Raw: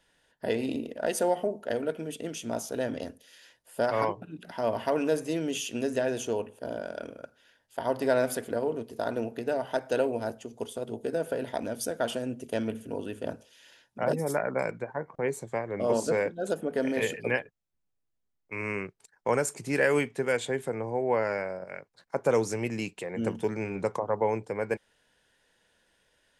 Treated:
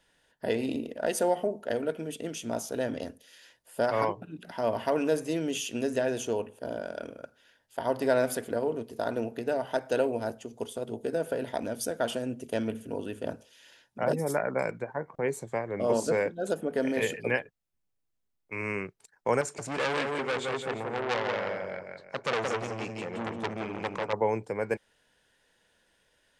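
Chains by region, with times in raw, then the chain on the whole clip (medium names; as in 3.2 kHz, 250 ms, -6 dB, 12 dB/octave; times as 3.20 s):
19.41–24.13 s: low-pass 6.4 kHz + feedback delay 173 ms, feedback 34%, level -4 dB + transformer saturation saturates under 2.6 kHz
whole clip: none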